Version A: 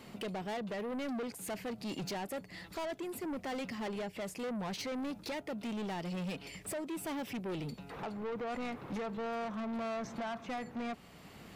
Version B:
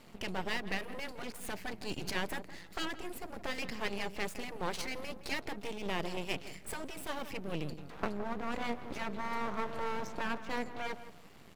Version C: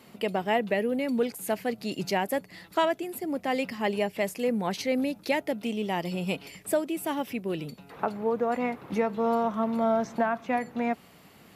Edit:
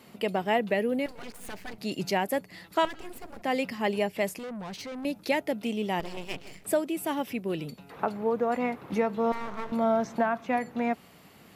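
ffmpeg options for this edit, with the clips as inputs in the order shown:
-filter_complex "[1:a]asplit=4[a][b][c][d];[2:a]asplit=6[e][f][g][h][i][j];[e]atrim=end=1.062[k];[a]atrim=start=1.058:end=1.782[l];[f]atrim=start=1.778:end=2.852[m];[b]atrim=start=2.848:end=3.422[n];[g]atrim=start=3.418:end=4.392[o];[0:a]atrim=start=4.388:end=5.052[p];[h]atrim=start=5.048:end=6.002[q];[c]atrim=start=5.998:end=6.642[r];[i]atrim=start=6.638:end=9.322[s];[d]atrim=start=9.318:end=9.722[t];[j]atrim=start=9.718[u];[k][l]acrossfade=d=0.004:c1=hsin:c2=hsin[v];[v][m]acrossfade=d=0.004:c1=hsin:c2=hsin[w];[w][n]acrossfade=d=0.004:c1=hsin:c2=hsin[x];[x][o]acrossfade=d=0.004:c1=hsin:c2=hsin[y];[y][p]acrossfade=d=0.004:c1=hsin:c2=hsin[z];[z][q]acrossfade=d=0.004:c1=hsin:c2=hsin[aa];[aa][r]acrossfade=d=0.004:c1=hsin:c2=hsin[ab];[ab][s]acrossfade=d=0.004:c1=hsin:c2=hsin[ac];[ac][t]acrossfade=d=0.004:c1=hsin:c2=hsin[ad];[ad][u]acrossfade=d=0.004:c1=hsin:c2=hsin"

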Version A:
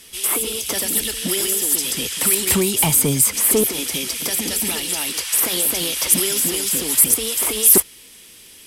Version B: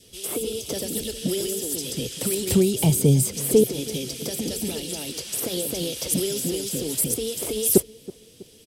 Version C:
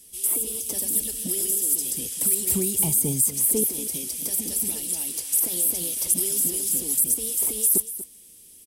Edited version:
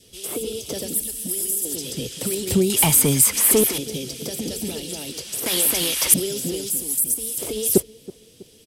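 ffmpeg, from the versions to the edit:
-filter_complex "[2:a]asplit=2[a][b];[0:a]asplit=2[c][d];[1:a]asplit=5[e][f][g][h][i];[e]atrim=end=0.942[j];[a]atrim=start=0.938:end=1.652[k];[f]atrim=start=1.648:end=2.702[l];[c]atrim=start=2.698:end=3.782[m];[g]atrim=start=3.778:end=5.462[n];[d]atrim=start=5.458:end=6.142[o];[h]atrim=start=6.138:end=6.702[p];[b]atrim=start=6.698:end=7.382[q];[i]atrim=start=7.378[r];[j][k]acrossfade=d=0.004:c1=hsin:c2=hsin[s];[s][l]acrossfade=d=0.004:c1=hsin:c2=hsin[t];[t][m]acrossfade=d=0.004:c1=hsin:c2=hsin[u];[u][n]acrossfade=d=0.004:c1=hsin:c2=hsin[v];[v][o]acrossfade=d=0.004:c1=hsin:c2=hsin[w];[w][p]acrossfade=d=0.004:c1=hsin:c2=hsin[x];[x][q]acrossfade=d=0.004:c1=hsin:c2=hsin[y];[y][r]acrossfade=d=0.004:c1=hsin:c2=hsin"

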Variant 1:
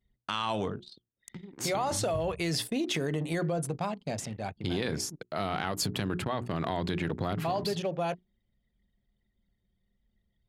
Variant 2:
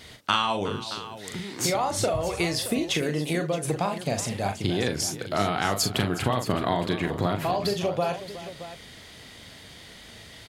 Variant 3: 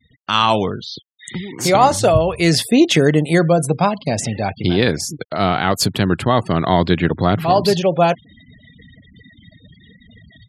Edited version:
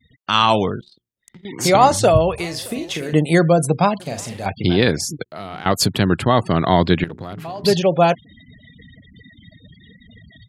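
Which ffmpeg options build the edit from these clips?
-filter_complex "[0:a]asplit=3[a][b][c];[1:a]asplit=2[d][e];[2:a]asplit=6[f][g][h][i][j][k];[f]atrim=end=0.812[l];[a]atrim=start=0.808:end=1.452[m];[g]atrim=start=1.448:end=2.382[n];[d]atrim=start=2.378:end=3.132[o];[h]atrim=start=3.128:end=4.002[p];[e]atrim=start=3.998:end=4.462[q];[i]atrim=start=4.458:end=5.262[r];[b]atrim=start=5.258:end=5.662[s];[j]atrim=start=5.658:end=7.042[t];[c]atrim=start=7.038:end=7.642[u];[k]atrim=start=7.638[v];[l][m]acrossfade=d=0.004:c1=hsin:c2=hsin[w];[w][n]acrossfade=d=0.004:c1=hsin:c2=hsin[x];[x][o]acrossfade=d=0.004:c1=hsin:c2=hsin[y];[y][p]acrossfade=d=0.004:c1=hsin:c2=hsin[z];[z][q]acrossfade=d=0.004:c1=hsin:c2=hsin[aa];[aa][r]acrossfade=d=0.004:c1=hsin:c2=hsin[ab];[ab][s]acrossfade=d=0.004:c1=hsin:c2=hsin[ac];[ac][t]acrossfade=d=0.004:c1=hsin:c2=hsin[ad];[ad][u]acrossfade=d=0.004:c1=hsin:c2=hsin[ae];[ae][v]acrossfade=d=0.004:c1=hsin:c2=hsin"

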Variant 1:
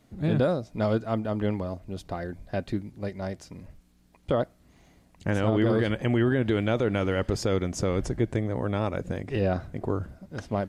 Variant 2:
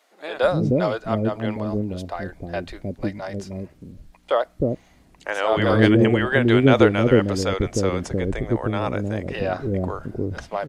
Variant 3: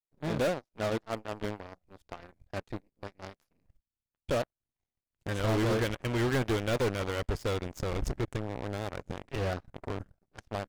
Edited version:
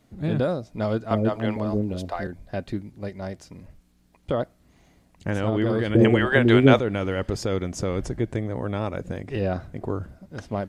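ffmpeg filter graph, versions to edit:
-filter_complex "[1:a]asplit=2[a][b];[0:a]asplit=3[c][d][e];[c]atrim=end=1.112[f];[a]atrim=start=1.108:end=2.272[g];[d]atrim=start=2.268:end=5.952[h];[b]atrim=start=5.948:end=6.792[i];[e]atrim=start=6.788[j];[f][g]acrossfade=d=0.004:c1=hsin:c2=hsin[k];[k][h]acrossfade=d=0.004:c1=hsin:c2=hsin[l];[l][i]acrossfade=d=0.004:c1=hsin:c2=hsin[m];[m][j]acrossfade=d=0.004:c1=hsin:c2=hsin"

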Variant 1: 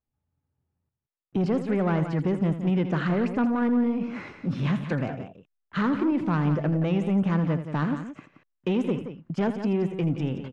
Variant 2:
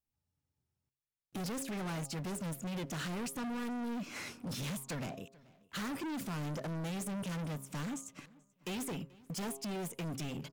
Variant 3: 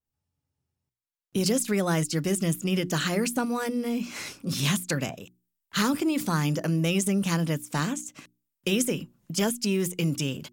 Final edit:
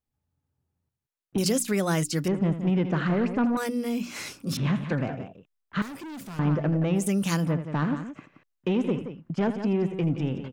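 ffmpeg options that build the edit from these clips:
-filter_complex "[2:a]asplit=3[a][b][c];[0:a]asplit=5[d][e][f][g][h];[d]atrim=end=1.382[i];[a]atrim=start=1.378:end=2.282[j];[e]atrim=start=2.278:end=3.572[k];[b]atrim=start=3.568:end=4.572[l];[f]atrim=start=4.568:end=5.822[m];[1:a]atrim=start=5.818:end=6.392[n];[g]atrim=start=6.388:end=7.1[o];[c]atrim=start=6.94:end=7.53[p];[h]atrim=start=7.37[q];[i][j]acrossfade=d=0.004:c1=hsin:c2=hsin[r];[r][k]acrossfade=d=0.004:c1=hsin:c2=hsin[s];[s][l]acrossfade=d=0.004:c1=hsin:c2=hsin[t];[t][m]acrossfade=d=0.004:c1=hsin:c2=hsin[u];[u][n]acrossfade=d=0.004:c1=hsin:c2=hsin[v];[v][o]acrossfade=d=0.004:c1=hsin:c2=hsin[w];[w][p]acrossfade=d=0.16:c1=tri:c2=tri[x];[x][q]acrossfade=d=0.16:c1=tri:c2=tri"

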